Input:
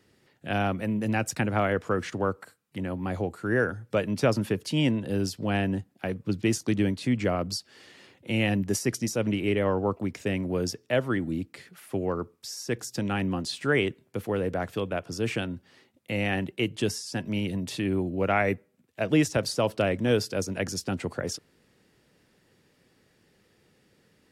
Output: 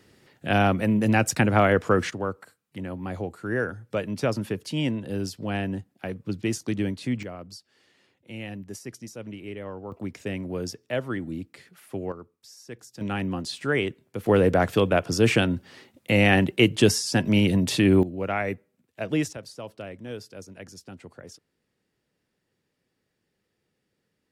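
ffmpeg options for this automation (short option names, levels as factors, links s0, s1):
-af "asetnsamples=n=441:p=0,asendcmd='2.11 volume volume -2dB;7.23 volume volume -11.5dB;9.92 volume volume -3dB;12.12 volume volume -11dB;13.01 volume volume -0.5dB;14.26 volume volume 9dB;18.03 volume volume -3dB;19.33 volume volume -13dB',volume=2"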